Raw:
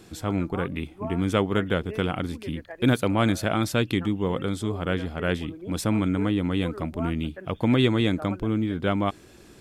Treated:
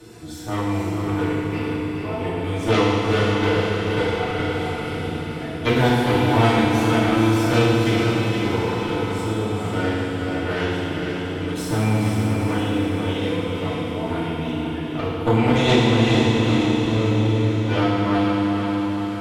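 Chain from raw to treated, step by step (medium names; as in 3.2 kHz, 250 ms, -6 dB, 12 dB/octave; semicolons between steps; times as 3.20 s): plain phase-vocoder stretch 2×; comb of notches 270 Hz; Chebyshev shaper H 3 -11 dB, 6 -28 dB, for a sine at -10 dBFS; echo that smears into a reverb 469 ms, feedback 52%, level -5 dB; FDN reverb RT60 1.8 s, low-frequency decay 1.05×, high-frequency decay 1×, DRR -10 dB; three bands compressed up and down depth 40%; trim +5.5 dB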